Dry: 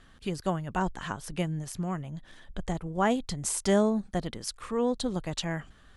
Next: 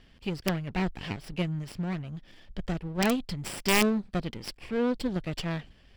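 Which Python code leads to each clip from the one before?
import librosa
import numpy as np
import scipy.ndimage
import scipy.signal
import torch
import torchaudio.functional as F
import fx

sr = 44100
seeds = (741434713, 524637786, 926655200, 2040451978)

y = fx.lower_of_two(x, sr, delay_ms=0.38)
y = fx.high_shelf_res(y, sr, hz=5700.0, db=-7.5, q=1.5)
y = (np.mod(10.0 ** (16.0 / 20.0) * y + 1.0, 2.0) - 1.0) / 10.0 ** (16.0 / 20.0)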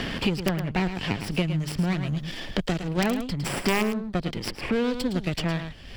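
y = x + 10.0 ** (-10.5 / 20.0) * np.pad(x, (int(108 * sr / 1000.0), 0))[:len(x)]
y = fx.band_squash(y, sr, depth_pct=100)
y = y * librosa.db_to_amplitude(3.0)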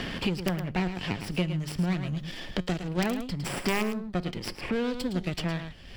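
y = fx.comb_fb(x, sr, f0_hz=180.0, decay_s=0.32, harmonics='all', damping=0.0, mix_pct=40)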